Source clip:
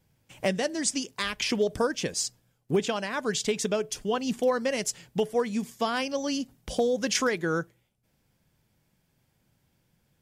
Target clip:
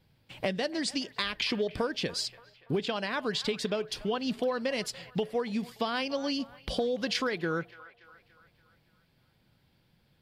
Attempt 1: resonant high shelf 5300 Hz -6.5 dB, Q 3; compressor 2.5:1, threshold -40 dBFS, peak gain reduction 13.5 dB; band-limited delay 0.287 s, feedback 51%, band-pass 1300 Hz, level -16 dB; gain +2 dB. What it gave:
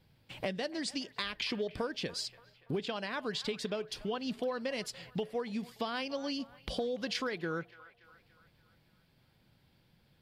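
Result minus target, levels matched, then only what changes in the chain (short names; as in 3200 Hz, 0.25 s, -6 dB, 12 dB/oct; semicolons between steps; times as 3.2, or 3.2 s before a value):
compressor: peak gain reduction +5 dB
change: compressor 2.5:1, threshold -31.5 dBFS, peak gain reduction 8.5 dB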